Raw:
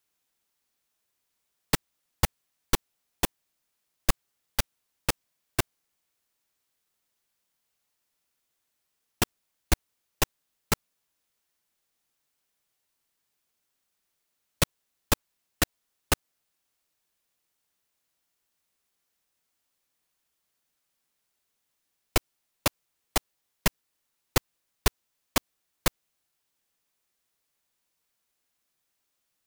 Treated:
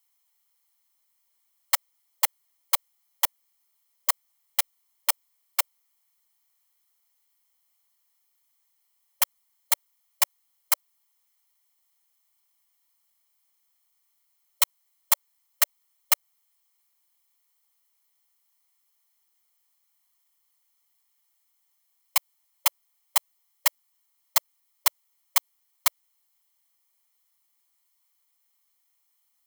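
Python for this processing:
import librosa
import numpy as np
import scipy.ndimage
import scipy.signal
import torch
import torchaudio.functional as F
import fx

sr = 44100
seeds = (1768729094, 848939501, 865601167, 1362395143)

y = fx.lower_of_two(x, sr, delay_ms=0.96)
y = fx.brickwall_highpass(y, sr, low_hz=570.0)
y = fx.high_shelf(y, sr, hz=10000.0, db=10.5)
y = F.gain(torch.from_numpy(y), 2.0).numpy()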